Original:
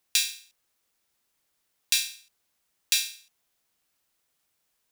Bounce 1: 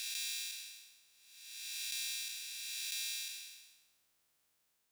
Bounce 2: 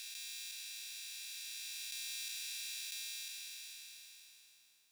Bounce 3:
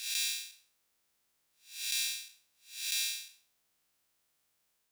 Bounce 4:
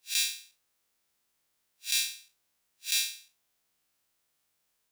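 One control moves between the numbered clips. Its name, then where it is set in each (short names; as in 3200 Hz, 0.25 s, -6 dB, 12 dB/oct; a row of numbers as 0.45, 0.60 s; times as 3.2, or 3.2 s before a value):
time blur, width: 705, 1760, 271, 98 ms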